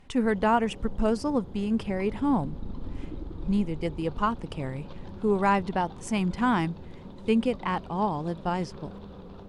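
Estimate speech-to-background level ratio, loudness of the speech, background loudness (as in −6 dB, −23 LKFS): 15.0 dB, −28.0 LKFS, −43.0 LKFS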